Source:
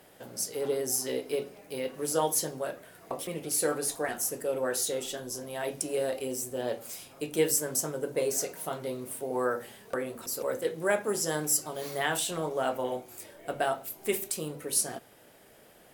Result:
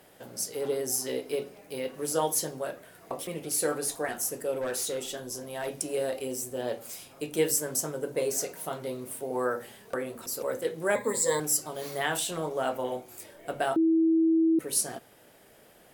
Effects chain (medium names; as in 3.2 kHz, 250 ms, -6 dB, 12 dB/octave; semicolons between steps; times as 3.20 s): 4.55–5.78 s: hard clipper -27.5 dBFS, distortion -26 dB; 10.95–11.40 s: rippled EQ curve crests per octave 1, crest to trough 18 dB; 13.76–14.59 s: bleep 325 Hz -19.5 dBFS